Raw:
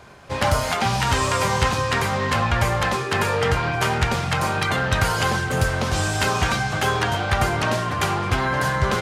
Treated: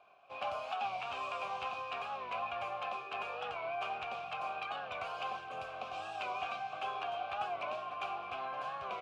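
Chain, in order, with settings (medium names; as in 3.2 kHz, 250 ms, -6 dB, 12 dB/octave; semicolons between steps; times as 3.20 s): vowel filter a; peaking EQ 3 kHz +7 dB 1.6 oct; warped record 45 rpm, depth 100 cents; trim -8.5 dB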